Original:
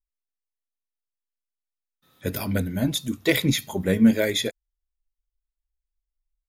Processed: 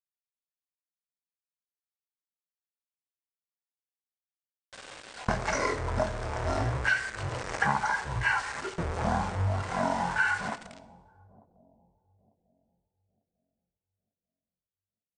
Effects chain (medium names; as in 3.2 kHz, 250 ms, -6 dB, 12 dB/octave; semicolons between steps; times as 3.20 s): jump at every zero crossing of -27 dBFS; gate with hold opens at -20 dBFS; high-order bell 2.2 kHz +15 dB 2.9 oct; compression 6:1, threshold -27 dBFS, peak gain reduction 21 dB; small samples zeroed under -37.5 dBFS; bucket-brigade echo 383 ms, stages 4096, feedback 32%, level -21 dB; FDN reverb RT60 0.46 s, low-frequency decay 0.7×, high-frequency decay 0.85×, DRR 12 dB; speed mistake 78 rpm record played at 33 rpm